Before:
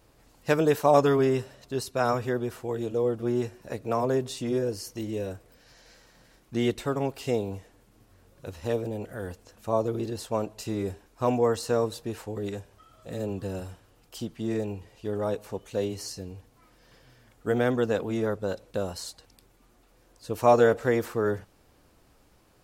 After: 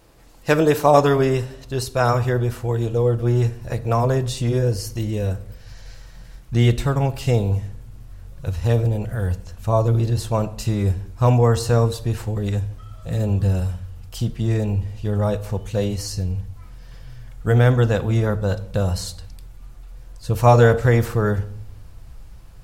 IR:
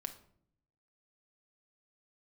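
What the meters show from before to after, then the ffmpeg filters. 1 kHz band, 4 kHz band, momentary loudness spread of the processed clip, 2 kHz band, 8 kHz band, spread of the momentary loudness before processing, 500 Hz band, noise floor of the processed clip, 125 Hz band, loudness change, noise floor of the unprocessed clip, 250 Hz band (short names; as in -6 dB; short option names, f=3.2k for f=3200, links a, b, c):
+6.0 dB, +7.0 dB, 12 LU, +7.0 dB, +7.0 dB, 16 LU, +4.5 dB, -41 dBFS, +17.0 dB, +7.5 dB, -61 dBFS, +5.5 dB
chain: -filter_complex "[0:a]asubboost=boost=10:cutoff=95,asplit=2[a][b];[1:a]atrim=start_sample=2205,asetrate=37485,aresample=44100[c];[b][c]afir=irnorm=-1:irlink=0,volume=1dB[d];[a][d]amix=inputs=2:normalize=0,volume=1.5dB"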